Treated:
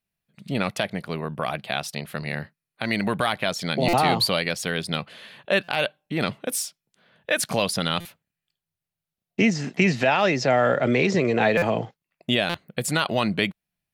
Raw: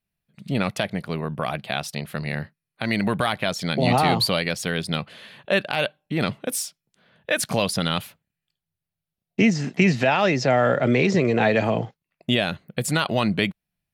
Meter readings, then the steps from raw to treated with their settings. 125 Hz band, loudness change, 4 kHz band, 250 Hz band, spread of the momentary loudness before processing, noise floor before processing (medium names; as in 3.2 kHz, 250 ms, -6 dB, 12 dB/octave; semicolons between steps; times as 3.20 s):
-3.5 dB, -1.0 dB, 0.0 dB, -2.5 dB, 11 LU, under -85 dBFS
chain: bass shelf 190 Hz -5.5 dB; buffer glitch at 3.88/5.63/8.00/11.57/12.49 s, samples 256, times 8